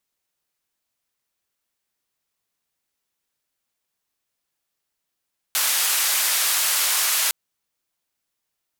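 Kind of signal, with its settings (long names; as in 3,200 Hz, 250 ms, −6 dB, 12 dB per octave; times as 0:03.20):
band-limited noise 940–15,000 Hz, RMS −21 dBFS 1.76 s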